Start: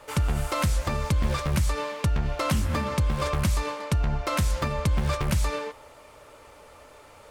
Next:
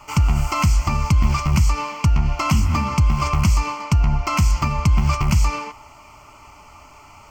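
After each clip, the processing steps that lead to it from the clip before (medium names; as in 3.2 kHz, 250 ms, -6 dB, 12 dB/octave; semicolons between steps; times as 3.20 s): static phaser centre 2.5 kHz, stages 8; trim +8.5 dB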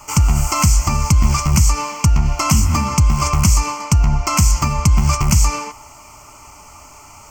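resonant high shelf 5 kHz +8.5 dB, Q 1.5; trim +3 dB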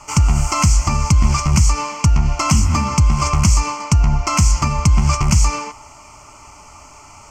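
low-pass 8.1 kHz 12 dB/octave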